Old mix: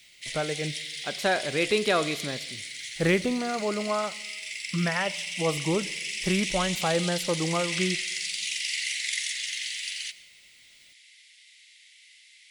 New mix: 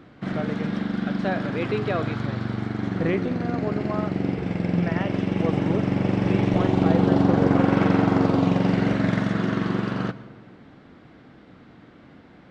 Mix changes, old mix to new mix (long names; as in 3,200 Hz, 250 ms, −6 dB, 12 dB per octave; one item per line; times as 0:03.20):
background: remove Chebyshev high-pass filter 2,000 Hz, order 6
master: add head-to-tape spacing loss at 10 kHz 32 dB